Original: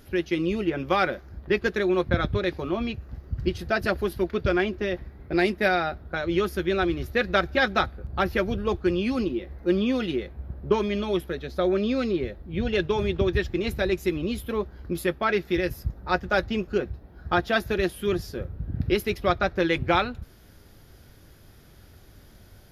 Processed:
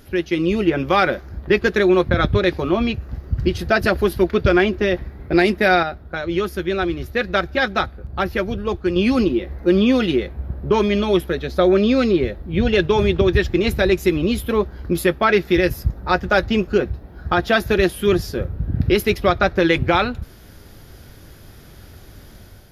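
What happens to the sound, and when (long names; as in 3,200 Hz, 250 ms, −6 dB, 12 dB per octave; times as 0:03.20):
0:05.83–0:08.96: clip gain −6 dB
whole clip: automatic gain control gain up to 4.5 dB; boost into a limiter +9 dB; level −4.5 dB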